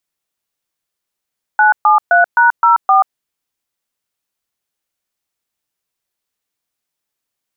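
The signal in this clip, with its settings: DTMF "973#04", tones 133 ms, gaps 127 ms, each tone -9 dBFS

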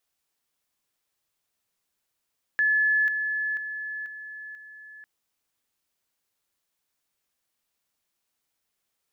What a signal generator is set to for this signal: level ladder 1.72 kHz -19 dBFS, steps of -6 dB, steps 5, 0.49 s 0.00 s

